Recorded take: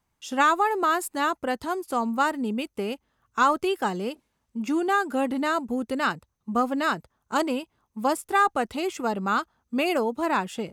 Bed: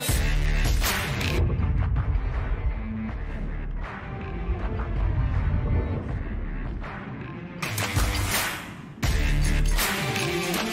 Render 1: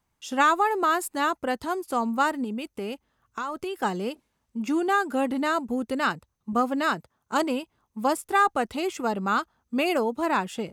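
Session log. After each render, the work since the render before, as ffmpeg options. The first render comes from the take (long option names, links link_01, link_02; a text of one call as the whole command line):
ffmpeg -i in.wav -filter_complex "[0:a]asettb=1/sr,asplit=3[link_01][link_02][link_03];[link_01]atrim=end=2.444[link_04];[link_02]atrim=start=2.44:end=3.83,asetpts=PTS-STARTPTS,afade=type=in:duration=0.004:curve=qsin,afade=type=out:start_time=1.386:duration=0.004:curve=qsin,acompressor=threshold=-28dB:ratio=6:attack=3.2:release=140:knee=1:detection=peak[link_05];[link_03]atrim=start=3.826[link_06];[link_04][link_05]acrossfade=duration=0.004:curve1=hsin:curve2=qsin[link_07];[link_07][link_06]acrossfade=duration=0.004:curve1=qsin:curve2=hsin,asettb=1/sr,asplit=3[link_08][link_09][link_10];[link_08]atrim=end=6.534[link_11];[link_09]atrim=start=6.53:end=7.44,asetpts=PTS-STARTPTS,afade=type=in:duration=0.004:curve=qsin,afade=type=out:start_time=0.906:duration=0.004:curve=qsin,highpass=83[link_12];[link_10]atrim=start=7.436[link_13];[link_11][link_12]acrossfade=duration=0.004:curve1=hsin:curve2=qsin[link_14];[link_14][link_13]acrossfade=duration=0.004:curve1=qsin:curve2=hsin" out.wav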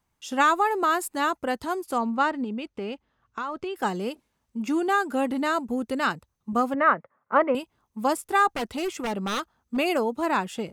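ffmpeg -i in.wav -filter_complex "[0:a]asettb=1/sr,asplit=3[link_01][link_02][link_03];[link_01]atrim=end=1.984[link_04];[link_02]atrim=start=1.98:end=3.76,asetpts=PTS-STARTPTS,afade=type=in:duration=0.004:curve=qsin,afade=type=out:start_time=1.776:duration=0.004:curve=qsin,lowpass=4500[link_05];[link_03]atrim=start=3.756[link_06];[link_04][link_05]acrossfade=duration=0.004:curve1=hsin:curve2=qsin[link_07];[link_07][link_06]acrossfade=duration=0.004:curve1=qsin:curve2=hsin,asettb=1/sr,asplit=3[link_08][link_09][link_10];[link_08]atrim=end=6.744[link_11];[link_09]atrim=start=6.74:end=7.55,asetpts=PTS-STARTPTS,afade=type=in:duration=0.004:curve=qsin,afade=type=out:start_time=0.806:duration=0.004:curve=qsin,highpass=180,equalizer=frequency=340:width_type=q:width=4:gain=-4,equalizer=frequency=550:width_type=q:width=4:gain=10,equalizer=frequency=1200:width_type=q:width=4:gain=8,equalizer=frequency=2000:width_type=q:width=4:gain=8,lowpass=frequency=2200:width=0.5412,lowpass=frequency=2200:width=1.3066[link_12];[link_10]atrim=start=7.546[link_13];[link_11][link_12]acrossfade=duration=0.004:curve1=hsin:curve2=qsin[link_14];[link_14][link_13]acrossfade=duration=0.004:curve1=qsin:curve2=hsin,asettb=1/sr,asplit=3[link_15][link_16][link_17];[link_15]atrim=end=8.524[link_18];[link_16]atrim=start=8.52:end=9.77,asetpts=PTS-STARTPTS,afade=type=in:duration=0.004:curve=qsin,afade=type=out:start_time=1.246:duration=0.004:curve=qsin,aeval=exprs='0.075*(abs(mod(val(0)/0.075+3,4)-2)-1)':channel_layout=same[link_19];[link_17]atrim=start=9.766[link_20];[link_18][link_19]acrossfade=duration=0.004:curve1=hsin:curve2=qsin[link_21];[link_21][link_20]acrossfade=duration=0.004:curve1=qsin:curve2=hsin" out.wav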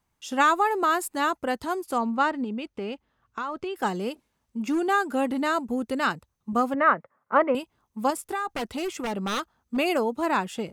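ffmpeg -i in.wav -filter_complex "[0:a]asettb=1/sr,asplit=3[link_01][link_02][link_03];[link_01]atrim=end=3.864[link_04];[link_02]atrim=start=3.86:end=4.82,asetpts=PTS-STARTPTS,afade=type=in:duration=0.004:curve=qsin,afade=type=out:start_time=0.956:duration=0.004:curve=qsin,asoftclip=type=hard:threshold=-20dB[link_05];[link_03]atrim=start=4.816[link_06];[link_04][link_05]acrossfade=duration=0.004:curve1=hsin:curve2=qsin[link_07];[link_07][link_06]acrossfade=duration=0.004:curve1=qsin:curve2=hsin,asettb=1/sr,asplit=3[link_08][link_09][link_10];[link_08]atrim=end=8.104[link_11];[link_09]atrim=start=8.1:end=9.24,asetpts=PTS-STARTPTS,afade=type=in:duration=0.004:curve=qsin,afade=type=out:start_time=1.136:duration=0.004:curve=qsin,acompressor=threshold=-25dB:ratio=12:attack=3.2:release=140:knee=1:detection=peak[link_12];[link_10]atrim=start=9.236[link_13];[link_11][link_12]acrossfade=duration=0.004:curve1=hsin:curve2=qsin[link_14];[link_14][link_13]acrossfade=duration=0.004:curve1=qsin:curve2=hsin" out.wav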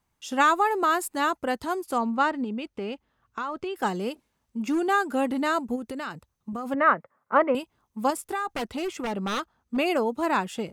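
ffmpeg -i in.wav -filter_complex "[0:a]asplit=3[link_01][link_02][link_03];[link_01]afade=type=out:start_time=5.75:duration=0.02[link_04];[link_02]acompressor=threshold=-30dB:ratio=6:attack=3.2:release=140:knee=1:detection=peak,afade=type=in:start_time=5.75:duration=0.02,afade=type=out:start_time=6.65:duration=0.02[link_05];[link_03]afade=type=in:start_time=6.65:duration=0.02[link_06];[link_04][link_05][link_06]amix=inputs=3:normalize=0,asettb=1/sr,asplit=3[link_07][link_08][link_09];[link_07]atrim=end=8.654[link_10];[link_08]atrim=start=8.65:end=10.06,asetpts=PTS-STARTPTS,afade=type=in:duration=0.004:curve=qsin,afade=type=out:start_time=1.406:duration=0.004:curve=qsin,highshelf=frequency=5400:gain=-5[link_11];[link_09]atrim=start=10.056[link_12];[link_10][link_11]acrossfade=duration=0.004:curve1=hsin:curve2=qsin[link_13];[link_13][link_12]acrossfade=duration=0.004:curve1=qsin:curve2=hsin" out.wav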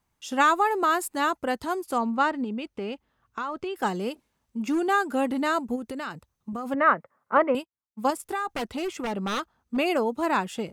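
ffmpeg -i in.wav -filter_complex "[0:a]asettb=1/sr,asplit=3[link_01][link_02][link_03];[link_01]atrim=end=7.374[link_04];[link_02]atrim=start=7.37:end=8.2,asetpts=PTS-STARTPTS,afade=type=in:duration=0.004:curve=qsin,afade=type=out:start_time=0.826:duration=0.004:curve=qsin,agate=range=-33dB:threshold=-30dB:ratio=3:release=100:detection=peak[link_05];[link_03]atrim=start=8.196[link_06];[link_04][link_05]acrossfade=duration=0.004:curve1=hsin:curve2=qsin[link_07];[link_07][link_06]acrossfade=duration=0.004:curve1=qsin:curve2=hsin" out.wav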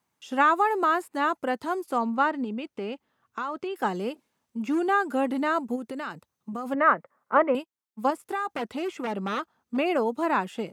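ffmpeg -i in.wav -filter_complex "[0:a]acrossover=split=2900[link_01][link_02];[link_02]acompressor=threshold=-48dB:ratio=4:attack=1:release=60[link_03];[link_01][link_03]amix=inputs=2:normalize=0,highpass=160" out.wav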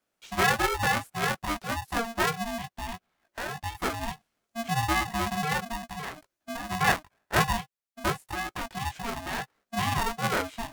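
ffmpeg -i in.wav -af "flanger=delay=18:depth=3:speed=0.33,aeval=exprs='val(0)*sgn(sin(2*PI*460*n/s))':channel_layout=same" out.wav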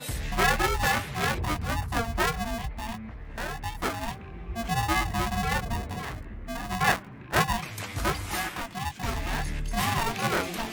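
ffmpeg -i in.wav -i bed.wav -filter_complex "[1:a]volume=-9dB[link_01];[0:a][link_01]amix=inputs=2:normalize=0" out.wav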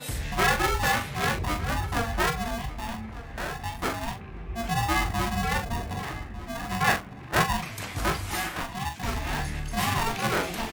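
ffmpeg -i in.wav -filter_complex "[0:a]asplit=2[link_01][link_02];[link_02]adelay=42,volume=-8dB[link_03];[link_01][link_03]amix=inputs=2:normalize=0,asplit=2[link_04][link_05];[link_05]adelay=1200,lowpass=frequency=4800:poles=1,volume=-16dB,asplit=2[link_06][link_07];[link_07]adelay=1200,lowpass=frequency=4800:poles=1,volume=0.29,asplit=2[link_08][link_09];[link_09]adelay=1200,lowpass=frequency=4800:poles=1,volume=0.29[link_10];[link_04][link_06][link_08][link_10]amix=inputs=4:normalize=0" out.wav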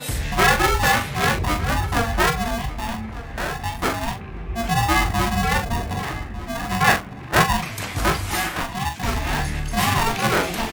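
ffmpeg -i in.wav -af "volume=6.5dB" out.wav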